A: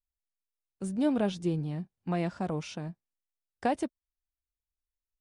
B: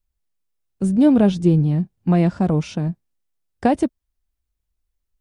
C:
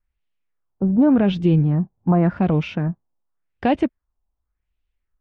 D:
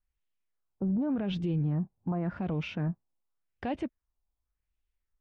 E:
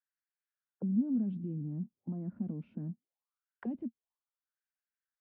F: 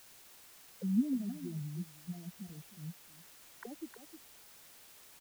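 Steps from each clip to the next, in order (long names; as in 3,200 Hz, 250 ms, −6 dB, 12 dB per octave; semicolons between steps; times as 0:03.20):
low-shelf EQ 380 Hz +11.5 dB; level +6.5 dB
brickwall limiter −8.5 dBFS, peak gain reduction 4 dB; auto-filter low-pass sine 0.88 Hz 850–3,000 Hz
brickwall limiter −17 dBFS, peak gain reduction 9.5 dB; level −7 dB
envelope filter 230–1,600 Hz, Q 5.7, down, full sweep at −32 dBFS; level +4 dB
spectral dynamics exaggerated over time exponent 3; bit-depth reduction 10 bits, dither triangular; far-end echo of a speakerphone 310 ms, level −8 dB; level +2.5 dB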